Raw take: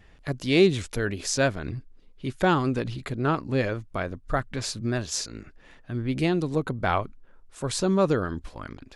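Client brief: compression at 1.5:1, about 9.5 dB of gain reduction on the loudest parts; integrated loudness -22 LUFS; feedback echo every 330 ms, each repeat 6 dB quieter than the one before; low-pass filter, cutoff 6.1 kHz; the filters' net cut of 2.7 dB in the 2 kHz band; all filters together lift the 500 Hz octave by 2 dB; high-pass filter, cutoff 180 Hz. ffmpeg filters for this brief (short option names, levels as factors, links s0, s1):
-af "highpass=180,lowpass=6100,equalizer=f=500:t=o:g=3,equalizer=f=2000:t=o:g=-4,acompressor=threshold=0.01:ratio=1.5,aecho=1:1:330|660|990|1320|1650|1980:0.501|0.251|0.125|0.0626|0.0313|0.0157,volume=3.76"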